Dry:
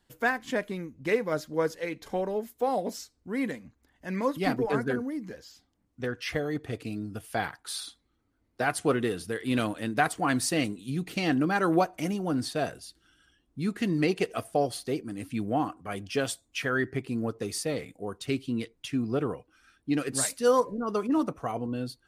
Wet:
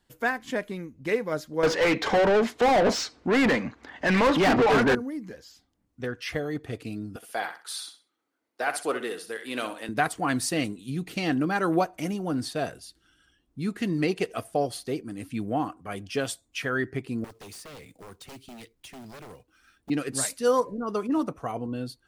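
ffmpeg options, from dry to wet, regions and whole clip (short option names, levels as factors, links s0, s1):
-filter_complex "[0:a]asettb=1/sr,asplit=3[s0][s1][s2];[s0]atrim=end=1.634[s3];[s1]atrim=start=1.63:end=4.95,asetpts=PTS-STARTPTS,afade=t=in:d=0.004:c=qsin,afade=t=out:st=3.316:d=0.004:c=qsin,lowpass=5500,asplit=2[s4][s5];[s5]highpass=f=720:p=1,volume=50.1,asoftclip=type=tanh:threshold=0.224[s6];[s4][s6]amix=inputs=2:normalize=0,lowpass=f=2300:p=1,volume=0.501[s7];[s2]atrim=start=4.946[s8];[s3][s7]acrossfade=d=0.004:c1=hsin:c2=qsin[s9];[s9][s8]acrossfade=d=0.004:c1=qsin:c2=hsin,asettb=1/sr,asplit=3[s10][s11][s12];[s10]atrim=end=7.164[s13];[s11]atrim=start=7.16:end=9.89,asetpts=PTS-STARTPTS,afade=t=in:d=0.004:c=qsin,afade=t=out:st=2.726:d=0.004:c=qsin,highpass=430,aecho=1:1:64|128|192:0.299|0.0716|0.0172,atrim=end_sample=120393[s14];[s12]atrim=start=9.886[s15];[s13][s14]acrossfade=d=0.004:c1=hsin:c2=qsin[s16];[s16][s15]acrossfade=d=0.004:c1=qsin:c2=hsin,asettb=1/sr,asplit=3[s17][s18][s19];[s17]atrim=end=17.244[s20];[s18]atrim=start=17.24:end=19.9,asetpts=PTS-STARTPTS,afade=t=in:d=0.004:c=qsin,afade=t=out:st=2.656:d=0.004:c=qsin,acrossover=split=120|730|2600|7300[s21][s22][s23][s24][s25];[s21]acompressor=threshold=0.00282:ratio=3[s26];[s22]acompressor=threshold=0.00794:ratio=3[s27];[s23]acompressor=threshold=0.00224:ratio=3[s28];[s24]acompressor=threshold=0.00398:ratio=3[s29];[s25]acompressor=threshold=0.00398:ratio=3[s30];[s26][s27][s28][s29][s30]amix=inputs=5:normalize=0,acrusher=bits=4:mode=log:mix=0:aa=0.000001,aeval=exprs='0.0126*(abs(mod(val(0)/0.0126+3,4)-2)-1)':c=same[s31];[s19]atrim=start=19.896[s32];[s20][s31]acrossfade=d=0.004:c1=hsin:c2=qsin[s33];[s33][s32]acrossfade=d=0.004:c1=qsin:c2=hsin"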